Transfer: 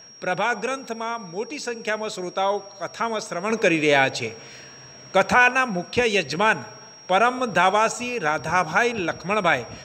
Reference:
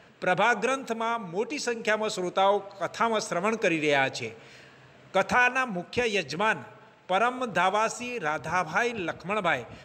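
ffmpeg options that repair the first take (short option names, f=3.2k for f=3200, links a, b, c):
-af "bandreject=f=5.6k:w=30,asetnsamples=n=441:p=0,asendcmd='3.5 volume volume -6dB',volume=0dB"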